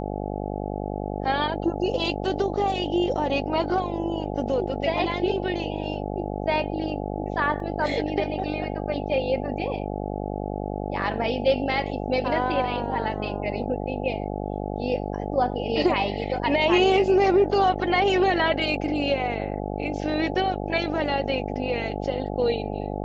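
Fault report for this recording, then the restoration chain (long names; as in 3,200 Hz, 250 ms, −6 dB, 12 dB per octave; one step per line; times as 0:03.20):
mains buzz 50 Hz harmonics 17 −30 dBFS
0:07.60: drop-out 2.4 ms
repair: hum removal 50 Hz, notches 17
repair the gap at 0:07.60, 2.4 ms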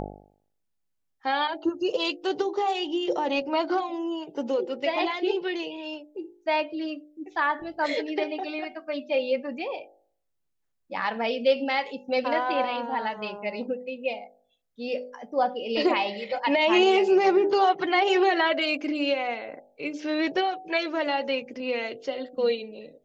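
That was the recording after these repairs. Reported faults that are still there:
none of them is left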